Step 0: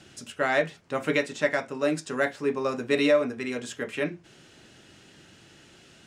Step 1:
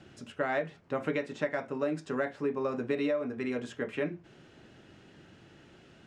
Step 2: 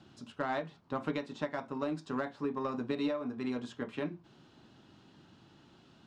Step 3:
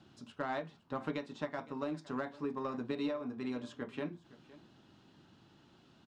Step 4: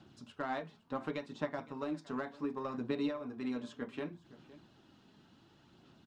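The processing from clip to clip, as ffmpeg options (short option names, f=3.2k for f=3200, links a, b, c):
-af "lowpass=f=1.4k:p=1,acompressor=threshold=-27dB:ratio=6"
-af "equalizer=f=125:t=o:w=1:g=3,equalizer=f=250:t=o:w=1:g=6,equalizer=f=500:t=o:w=1:g=-4,equalizer=f=1k:t=o:w=1:g=10,equalizer=f=2k:t=o:w=1:g=-6,equalizer=f=4k:t=o:w=1:g=9,aeval=exprs='0.2*(cos(1*acos(clip(val(0)/0.2,-1,1)))-cos(1*PI/2))+0.00631*(cos(7*acos(clip(val(0)/0.2,-1,1)))-cos(7*PI/2))':c=same,volume=-5.5dB"
-af "aecho=1:1:513:0.106,volume=-3dB"
-af "aphaser=in_gain=1:out_gain=1:delay=4.7:decay=0.3:speed=0.68:type=sinusoidal,volume=-1dB"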